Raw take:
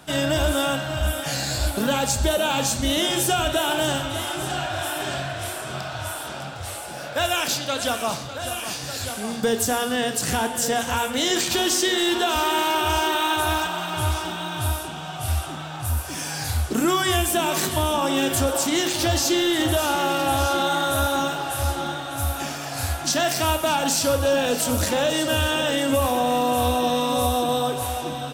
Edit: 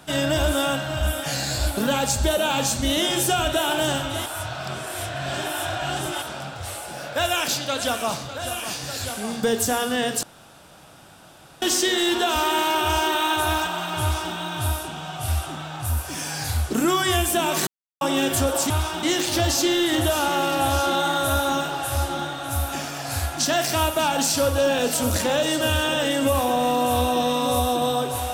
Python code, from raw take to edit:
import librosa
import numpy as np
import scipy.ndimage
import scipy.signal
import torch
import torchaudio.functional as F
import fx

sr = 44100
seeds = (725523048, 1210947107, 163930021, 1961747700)

y = fx.edit(x, sr, fx.reverse_span(start_s=4.26, length_s=1.96),
    fx.room_tone_fill(start_s=10.23, length_s=1.39),
    fx.duplicate(start_s=14.01, length_s=0.33, to_s=18.7),
    fx.silence(start_s=17.67, length_s=0.34), tone=tone)